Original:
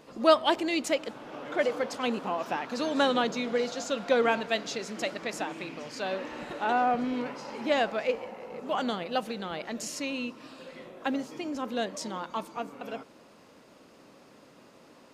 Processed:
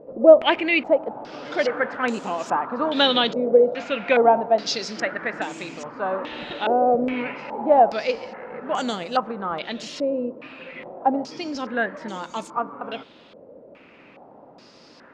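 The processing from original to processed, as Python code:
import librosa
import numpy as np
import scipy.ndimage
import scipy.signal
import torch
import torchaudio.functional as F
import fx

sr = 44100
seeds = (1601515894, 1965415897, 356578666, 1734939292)

y = fx.notch(x, sr, hz=1100.0, q=21.0)
y = fx.filter_held_lowpass(y, sr, hz=2.4, low_hz=550.0, high_hz=7300.0)
y = F.gain(torch.from_numpy(y), 4.0).numpy()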